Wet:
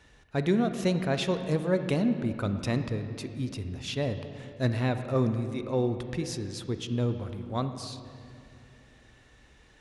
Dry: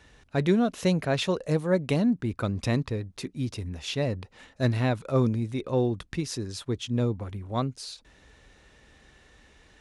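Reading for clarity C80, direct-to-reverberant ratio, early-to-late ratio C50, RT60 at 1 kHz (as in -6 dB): 9.5 dB, 8.0 dB, 9.0 dB, 2.4 s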